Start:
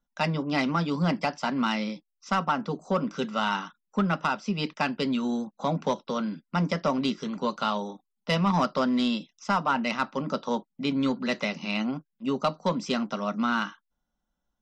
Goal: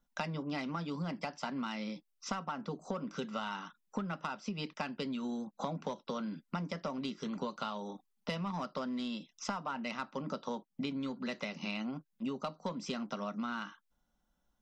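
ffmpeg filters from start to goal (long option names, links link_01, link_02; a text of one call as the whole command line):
ffmpeg -i in.wav -af "acompressor=threshold=-37dB:ratio=16,volume=2.5dB" out.wav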